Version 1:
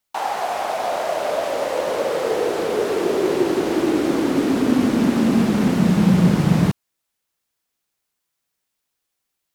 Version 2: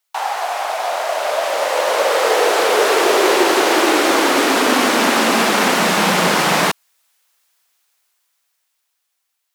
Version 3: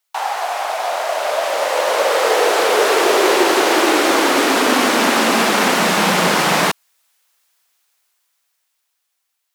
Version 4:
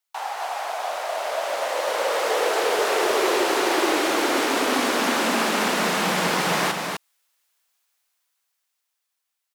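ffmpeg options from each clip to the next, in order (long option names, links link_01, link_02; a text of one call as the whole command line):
ffmpeg -i in.wav -af "highpass=750,dynaudnorm=framelen=360:gausssize=11:maxgain=11dB,volume=4.5dB" out.wav
ffmpeg -i in.wav -af anull out.wav
ffmpeg -i in.wav -af "asoftclip=type=hard:threshold=-5.5dB,aecho=1:1:253:0.596,volume=-8.5dB" out.wav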